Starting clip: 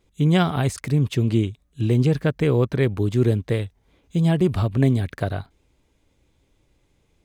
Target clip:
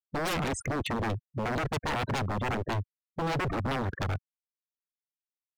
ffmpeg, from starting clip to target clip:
-af "afftfilt=real='re*gte(hypot(re,im),0.0355)':imag='im*gte(hypot(re,im),0.0355)':win_size=1024:overlap=0.75,atempo=1.3,aeval=exprs='0.0562*(abs(mod(val(0)/0.0562+3,4)-2)-1)':c=same"

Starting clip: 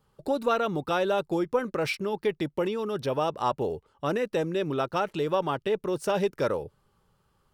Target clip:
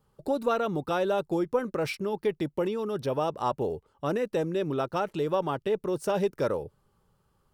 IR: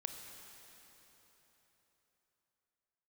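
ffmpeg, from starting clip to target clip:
-af "equalizer=f=2.7k:w=0.48:g=-4.5"

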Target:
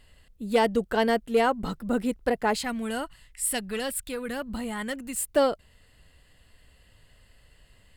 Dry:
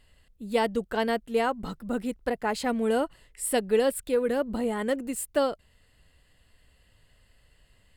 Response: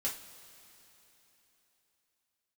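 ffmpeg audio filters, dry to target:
-filter_complex "[0:a]asoftclip=type=tanh:threshold=-14.5dB,asettb=1/sr,asplit=3[a][b][c];[a]atrim=end=2.564[d];[b]atrim=start=2.56:end=5.16,asetpts=PTS-STARTPTS,afade=t=in:d=0.004:c=qsin,afade=t=out:st=2.596:d=0.004:c=qsin,equalizer=f=440:w=0.78:g=-14[e];[c]atrim=start=5.156[f];[d][e]acrossfade=d=0.004:c1=hsin:c2=qsin[g];[g][f]acrossfade=d=0.004:c1=qsin:c2=hsin,volume=4dB"

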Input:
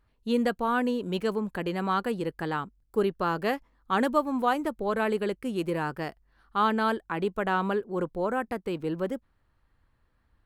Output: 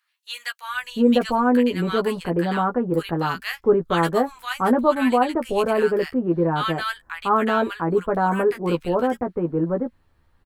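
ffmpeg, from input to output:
-filter_complex "[0:a]asplit=2[a][b];[b]adelay=12,volume=-4.5dB[c];[a][c]amix=inputs=2:normalize=0,acrossover=split=1400[d][e];[d]adelay=700[f];[f][e]amix=inputs=2:normalize=0,volume=6.5dB"

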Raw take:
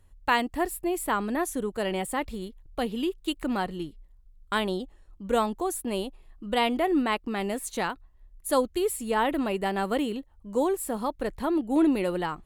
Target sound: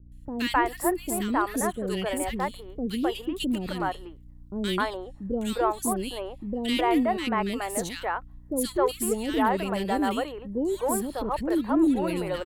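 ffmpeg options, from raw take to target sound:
-filter_complex "[0:a]asplit=2[a][b];[b]asoftclip=type=tanh:threshold=-24dB,volume=-6dB[c];[a][c]amix=inputs=2:normalize=0,aeval=exprs='val(0)+0.00355*(sin(2*PI*60*n/s)+sin(2*PI*2*60*n/s)/2+sin(2*PI*3*60*n/s)/3+sin(2*PI*4*60*n/s)/4+sin(2*PI*5*60*n/s)/5)':c=same,acrossover=split=450|2100[d][e][f];[f]adelay=120[g];[e]adelay=260[h];[d][h][g]amix=inputs=3:normalize=0"

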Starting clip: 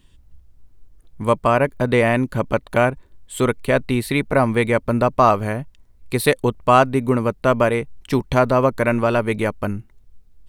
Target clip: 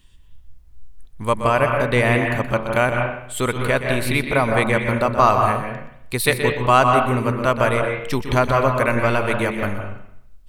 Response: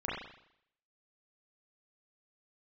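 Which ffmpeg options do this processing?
-filter_complex "[0:a]equalizer=f=280:w=0.35:g=-7.5,asplit=2[a][b];[1:a]atrim=start_sample=2205,adelay=123[c];[b][c]afir=irnorm=-1:irlink=0,volume=-8dB[d];[a][d]amix=inputs=2:normalize=0,volume=2.5dB"

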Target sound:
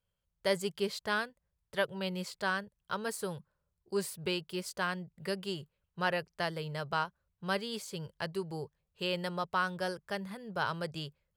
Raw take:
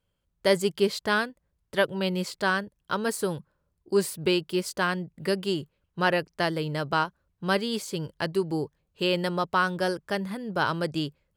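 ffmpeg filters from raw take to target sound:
-af "equalizer=f=290:t=o:w=0.42:g=-14.5,volume=-7dB"

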